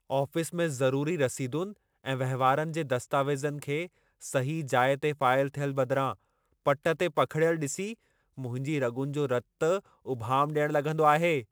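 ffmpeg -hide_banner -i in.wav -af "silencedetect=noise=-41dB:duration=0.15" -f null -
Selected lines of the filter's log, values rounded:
silence_start: 1.72
silence_end: 2.04 | silence_duration: 0.32
silence_start: 3.86
silence_end: 4.22 | silence_duration: 0.36
silence_start: 6.13
silence_end: 6.66 | silence_duration: 0.52
silence_start: 7.94
silence_end: 8.38 | silence_duration: 0.44
silence_start: 9.40
silence_end: 9.61 | silence_duration: 0.21
silence_start: 9.79
silence_end: 10.06 | silence_duration: 0.27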